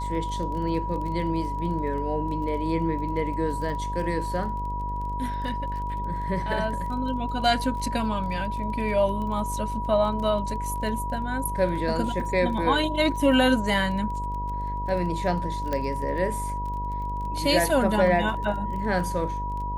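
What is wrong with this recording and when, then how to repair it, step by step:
mains buzz 50 Hz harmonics 14 −32 dBFS
surface crackle 22 per second −34 dBFS
whistle 970 Hz −30 dBFS
0:15.73: click −15 dBFS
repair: click removal
hum removal 50 Hz, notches 14
notch filter 970 Hz, Q 30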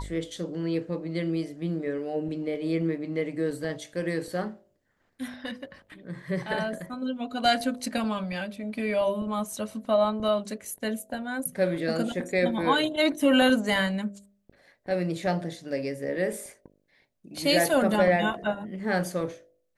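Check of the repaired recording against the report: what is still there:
0:15.73: click

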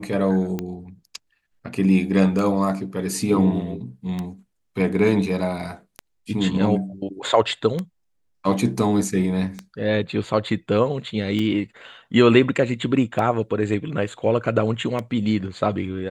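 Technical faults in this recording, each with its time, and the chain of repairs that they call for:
scratch tick 33 1/3 rpm −14 dBFS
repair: click removal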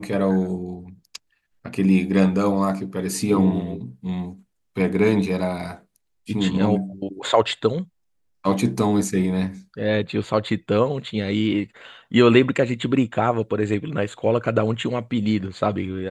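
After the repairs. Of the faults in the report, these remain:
none of them is left

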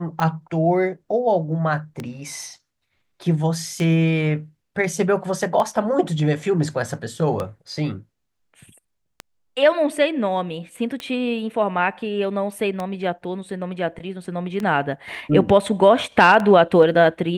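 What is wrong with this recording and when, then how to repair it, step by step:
scratch tick 33 1/3 rpm −13 dBFS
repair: click removal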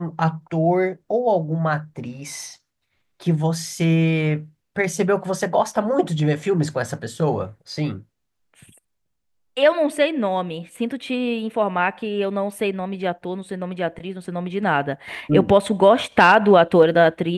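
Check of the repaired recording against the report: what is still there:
none of them is left

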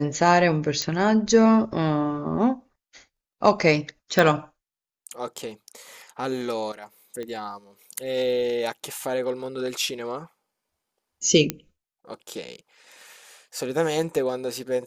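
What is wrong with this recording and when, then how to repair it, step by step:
0:00.82: click −11 dBFS
0:04.19: click −6 dBFS
0:07.23: click −22 dBFS
0:11.50: click −7 dBFS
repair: click removal

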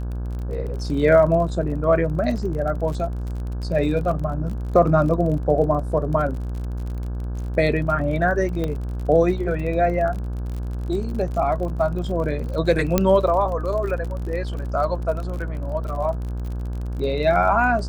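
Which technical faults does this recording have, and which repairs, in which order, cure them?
mains buzz 60 Hz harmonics 28 −27 dBFS
surface crackle 40 per second −30 dBFS
0:08.64: click −14 dBFS
0:12.98: click −3 dBFS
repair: click removal
hum removal 60 Hz, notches 28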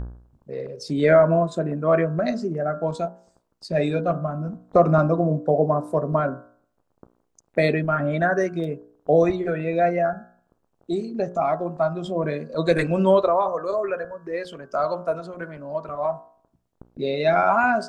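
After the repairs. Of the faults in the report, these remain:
0:08.64: click

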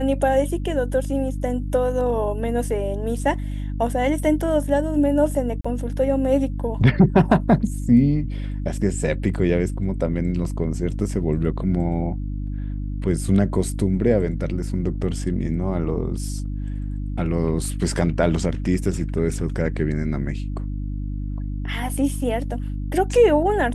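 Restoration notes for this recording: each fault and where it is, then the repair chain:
mains hum 50 Hz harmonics 6 −27 dBFS
0:05.61–0:05.64: drop-out 35 ms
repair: hum removal 50 Hz, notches 6
repair the gap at 0:05.61, 35 ms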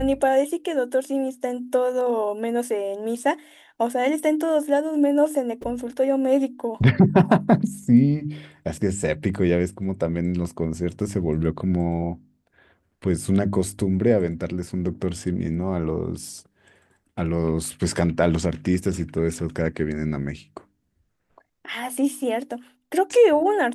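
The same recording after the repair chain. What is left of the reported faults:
none of them is left

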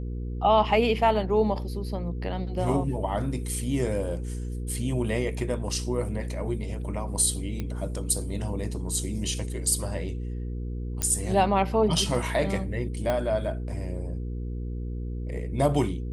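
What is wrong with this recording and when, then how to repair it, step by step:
mains hum 60 Hz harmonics 8 −32 dBFS
0:07.60: click −19 dBFS
0:11.02: click −11 dBFS
0:13.10: click −14 dBFS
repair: click removal
hum removal 60 Hz, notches 8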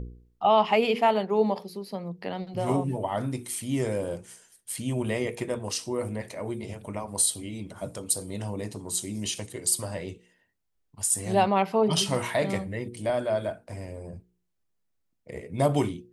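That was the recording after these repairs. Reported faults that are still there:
0:13.10: click

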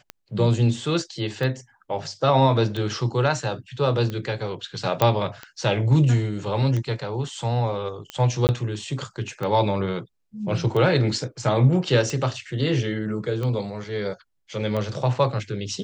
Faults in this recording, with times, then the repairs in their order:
scratch tick 45 rpm −17 dBFS
0:05.02: click −6 dBFS
0:08.47–0:08.49: drop-out 19 ms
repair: click removal
repair the gap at 0:08.47, 19 ms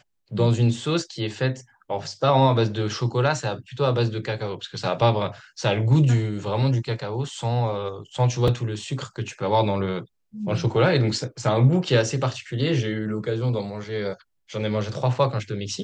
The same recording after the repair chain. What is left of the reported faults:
0:05.02: click

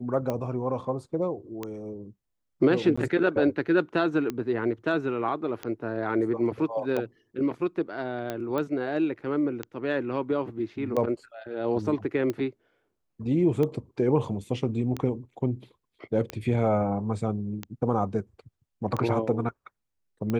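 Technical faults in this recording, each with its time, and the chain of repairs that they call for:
scratch tick 45 rpm −17 dBFS
0:02.96–0:02.98: drop-out 15 ms
0:08.58: click −18 dBFS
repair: click removal
repair the gap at 0:02.96, 15 ms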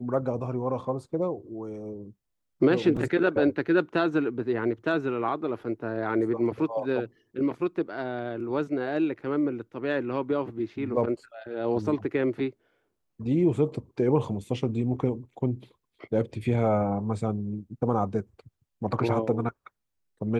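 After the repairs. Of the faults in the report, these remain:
none of them is left

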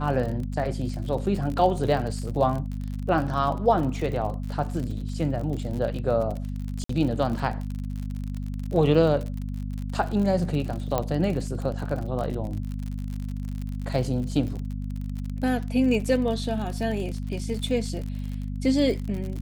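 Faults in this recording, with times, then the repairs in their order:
surface crackle 51 per second −31 dBFS
mains hum 50 Hz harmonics 5 −31 dBFS
0:06.84–0:06.89: drop-out 54 ms
0:10.98: click −11 dBFS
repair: click removal
hum removal 50 Hz, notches 5
repair the gap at 0:06.84, 54 ms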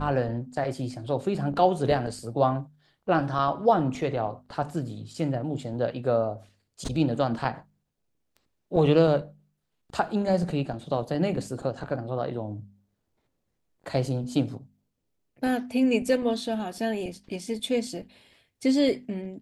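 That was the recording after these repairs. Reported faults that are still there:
none of them is left

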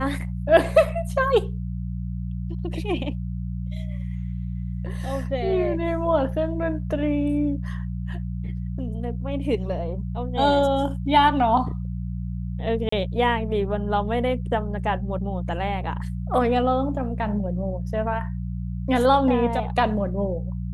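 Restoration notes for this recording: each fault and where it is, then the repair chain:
mains hum 60 Hz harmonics 3 −29 dBFS
0:12.89–0:12.92: drop-out 34 ms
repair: hum removal 60 Hz, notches 3
repair the gap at 0:12.89, 34 ms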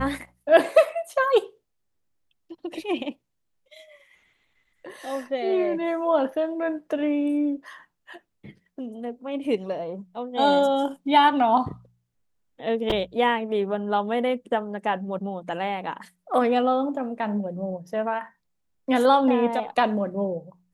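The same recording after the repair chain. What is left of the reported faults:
none of them is left

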